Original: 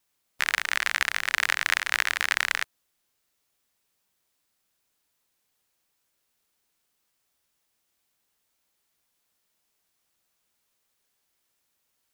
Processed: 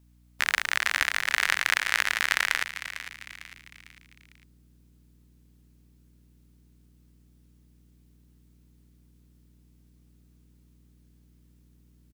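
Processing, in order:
mains hum 60 Hz, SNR 25 dB
echo with shifted repeats 451 ms, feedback 44%, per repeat +97 Hz, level −12 dB

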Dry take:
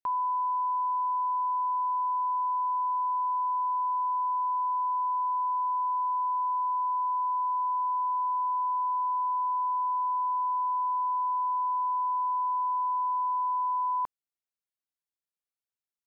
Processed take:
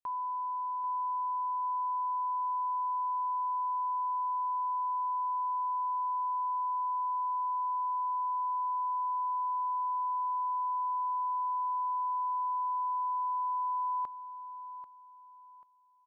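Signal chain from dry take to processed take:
on a send: repeating echo 789 ms, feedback 32%, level −12 dB
on the sum: level −6.5 dB

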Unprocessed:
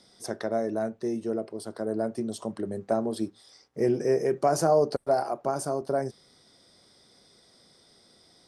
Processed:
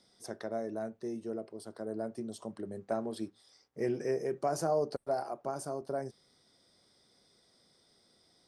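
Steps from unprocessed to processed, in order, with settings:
0:02.73–0:04.11: dynamic equaliser 2,100 Hz, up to +6 dB, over −46 dBFS, Q 0.77
level −8.5 dB

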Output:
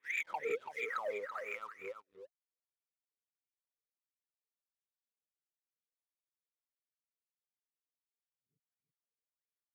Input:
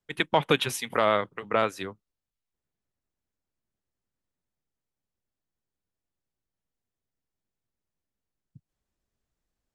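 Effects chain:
peak hold with a rise ahead of every peak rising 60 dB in 0.36 s
flanger swept by the level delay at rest 8.4 ms, full sweep at −20.5 dBFS
downward compressor 6 to 1, threshold −29 dBFS, peak gain reduction 11.5 dB
LFO wah 1.5 Hz 420–2,400 Hz, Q 21
leveller curve on the samples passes 2
parametric band 670 Hz −6 dB 0.36 octaves
single-tap delay 333 ms −8 dB
level +2 dB

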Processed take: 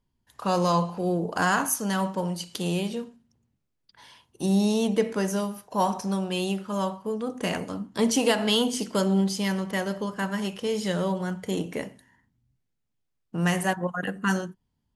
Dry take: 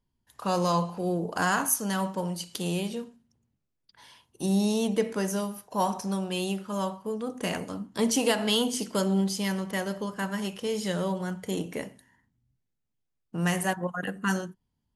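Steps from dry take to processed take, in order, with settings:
high-shelf EQ 9,300 Hz −7 dB
level +2.5 dB

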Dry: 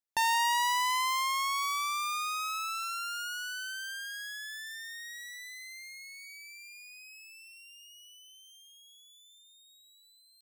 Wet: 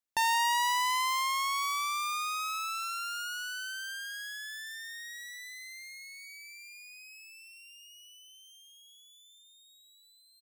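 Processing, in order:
repeating echo 472 ms, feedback 38%, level −23.5 dB

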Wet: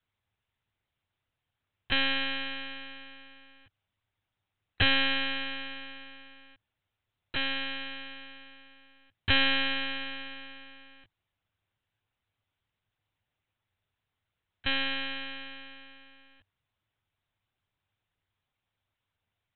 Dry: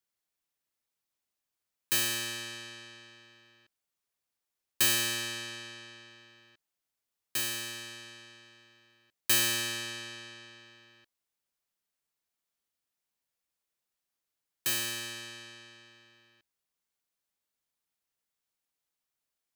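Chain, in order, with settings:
one-pitch LPC vocoder at 8 kHz 270 Hz
parametric band 100 Hz +13.5 dB 0.62 octaves
level +7.5 dB

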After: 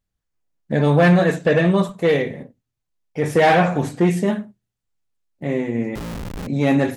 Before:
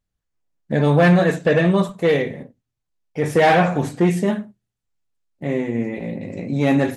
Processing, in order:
0:05.95–0:06.47: comparator with hysteresis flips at −28.5 dBFS

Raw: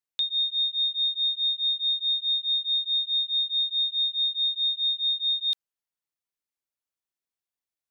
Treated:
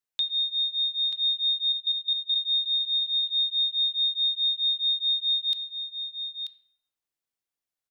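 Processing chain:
0:01.72–0:02.36: output level in coarse steps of 12 dB
single-tap delay 935 ms −7.5 dB
on a send at −11 dB: convolution reverb RT60 0.75 s, pre-delay 7 ms

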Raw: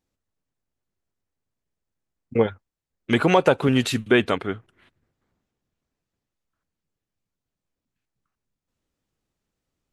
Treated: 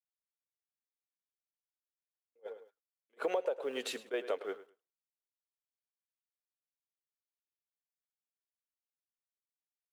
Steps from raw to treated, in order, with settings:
mu-law and A-law mismatch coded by mu
four-pole ladder high-pass 420 Hz, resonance 60%
noise gate −52 dBFS, range −50 dB
on a send: repeating echo 105 ms, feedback 18%, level −17.5 dB
on the sum: dynamic equaliser 610 Hz, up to +5 dB, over −31 dBFS, Q 2.4
downward compressor 6 to 1, threshold −28 dBFS, peak gain reduction 15.5 dB
level that may rise only so fast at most 560 dB per second
level −2.5 dB

